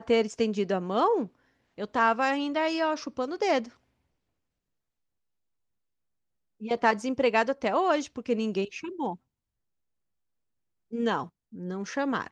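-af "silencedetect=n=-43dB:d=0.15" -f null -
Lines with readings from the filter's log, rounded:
silence_start: 1.27
silence_end: 1.78 | silence_duration: 0.51
silence_start: 3.69
silence_end: 6.61 | silence_duration: 2.92
silence_start: 9.15
silence_end: 10.92 | silence_duration: 1.77
silence_start: 11.27
silence_end: 11.53 | silence_duration: 0.26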